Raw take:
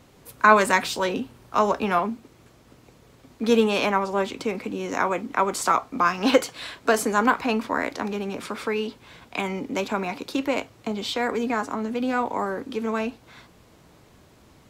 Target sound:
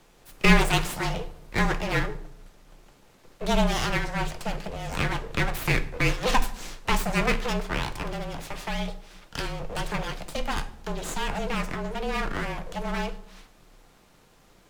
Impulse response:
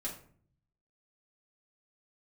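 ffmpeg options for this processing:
-filter_complex "[0:a]aeval=exprs='abs(val(0))':c=same,afreqshift=-31,asplit=2[a][b];[1:a]atrim=start_sample=2205,asetrate=28665,aresample=44100[c];[b][c]afir=irnorm=-1:irlink=0,volume=-10dB[d];[a][d]amix=inputs=2:normalize=0,volume=-2.5dB"

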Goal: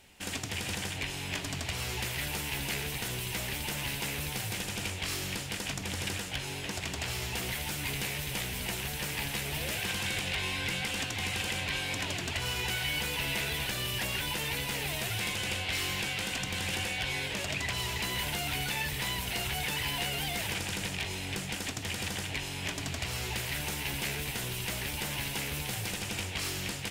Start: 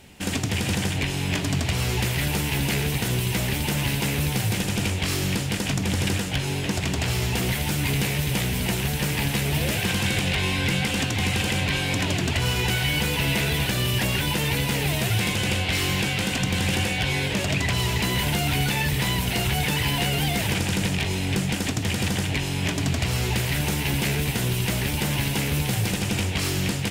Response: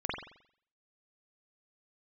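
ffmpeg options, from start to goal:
-af "equalizer=f=160:t=o:w=2.9:g=-9,volume=-6.5dB"

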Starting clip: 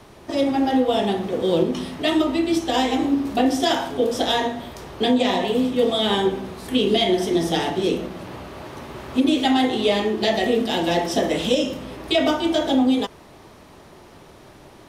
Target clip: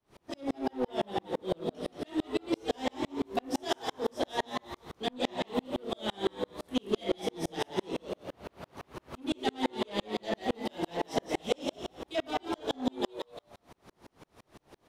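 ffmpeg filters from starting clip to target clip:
-filter_complex "[0:a]asoftclip=type=tanh:threshold=-14.5dB,asplit=2[a][b];[b]asplit=4[c][d][e][f];[c]adelay=178,afreqshift=110,volume=-4.5dB[g];[d]adelay=356,afreqshift=220,volume=-13.6dB[h];[e]adelay=534,afreqshift=330,volume=-22.7dB[i];[f]adelay=712,afreqshift=440,volume=-31.9dB[j];[g][h][i][j]amix=inputs=4:normalize=0[k];[a][k]amix=inputs=2:normalize=0,aeval=exprs='val(0)*pow(10,-40*if(lt(mod(-5.9*n/s,1),2*abs(-5.9)/1000),1-mod(-5.9*n/s,1)/(2*abs(-5.9)/1000),(mod(-5.9*n/s,1)-2*abs(-5.9)/1000)/(1-2*abs(-5.9)/1000))/20)':c=same,volume=-3.5dB"

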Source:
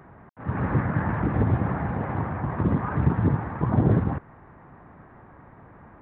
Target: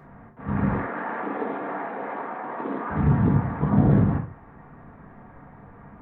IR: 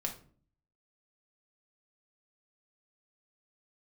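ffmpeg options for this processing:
-filter_complex "[0:a]asettb=1/sr,asplit=3[a][b][c];[a]atrim=end=0.734[d];[b]atrim=start=0.73:end=2.9,asetpts=PTS-STARTPTS,afade=t=in:d=0.004:c=qsin,afade=t=out:st=2.166:d=0.004:c=qsin,highpass=f=330:w=0.5412,highpass=f=330:w=1.3066[e];[c]atrim=start=2.896[f];[d][e]acrossfade=d=0.004:c1=hsin:c2=qsin[g];[g][f]acrossfade=d=0.004:c1=qsin:c2=hsin[h];[1:a]atrim=start_sample=2205,afade=t=out:st=0.21:d=0.01,atrim=end_sample=9702[i];[h][i]afir=irnorm=-1:irlink=0"

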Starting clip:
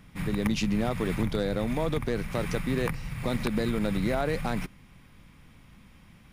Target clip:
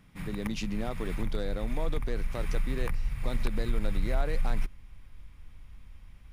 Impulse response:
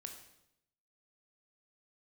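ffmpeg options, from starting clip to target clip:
-af "asubboost=boost=10.5:cutoff=57,volume=-6dB"

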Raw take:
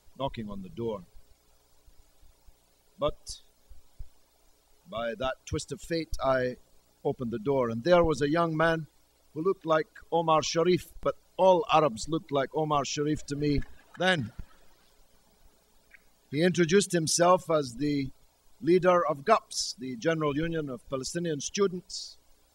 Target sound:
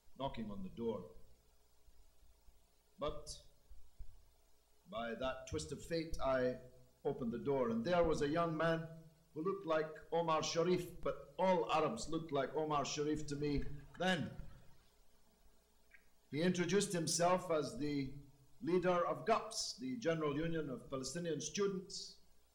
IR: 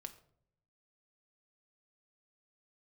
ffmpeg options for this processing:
-filter_complex "[0:a]asoftclip=type=tanh:threshold=-18dB[a];[1:a]atrim=start_sample=2205[b];[a][b]afir=irnorm=-1:irlink=0,volume=-4.5dB"

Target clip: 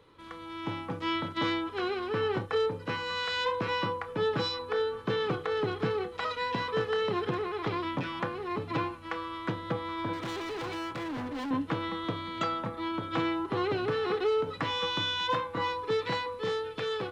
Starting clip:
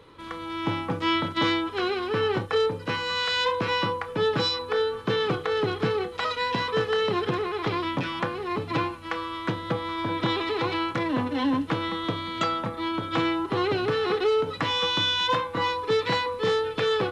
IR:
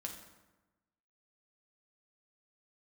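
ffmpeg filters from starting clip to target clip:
-filter_complex "[0:a]acrossover=split=2300[a][b];[a]dynaudnorm=f=230:g=11:m=3.5dB[c];[c][b]amix=inputs=2:normalize=0,asettb=1/sr,asplit=3[d][e][f];[d]atrim=end=10.134[g];[e]atrim=start=10.13:end=11.51,asetpts=PTS-STARTPTS,afade=t=in:d=0.004:c=qsin,afade=t=out:st=1.376:d=0.004:c=qsin,asoftclip=type=hard:threshold=-25.5dB[h];[f]atrim=start=11.506[i];[g][h]acrossfade=d=0.004:c1=hsin:c2=qsin[j];[j][i]acrossfade=d=0.004:c1=qsin:c2=hsin,volume=-8dB"

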